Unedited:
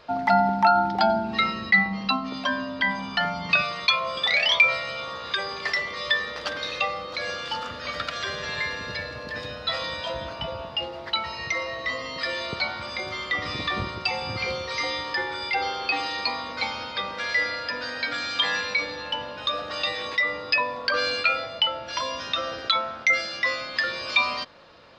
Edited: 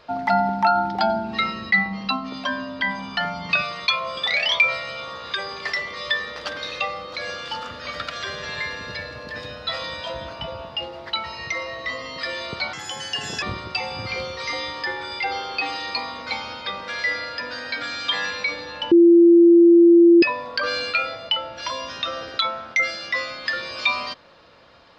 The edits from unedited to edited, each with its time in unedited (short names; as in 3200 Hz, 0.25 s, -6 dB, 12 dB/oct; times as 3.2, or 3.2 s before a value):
12.73–13.73 speed 144%
19.22–20.53 bleep 341 Hz -8 dBFS